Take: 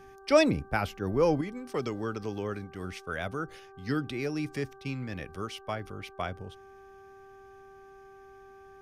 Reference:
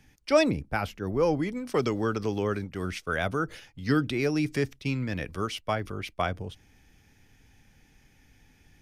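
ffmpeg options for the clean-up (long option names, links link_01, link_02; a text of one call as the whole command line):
ffmpeg -i in.wav -af "bandreject=frequency=390:width_type=h:width=4,bandreject=frequency=780:width_type=h:width=4,bandreject=frequency=1170:width_type=h:width=4,bandreject=frequency=1560:width_type=h:width=4,asetnsamples=nb_out_samples=441:pad=0,asendcmd='1.41 volume volume 6dB',volume=0dB" out.wav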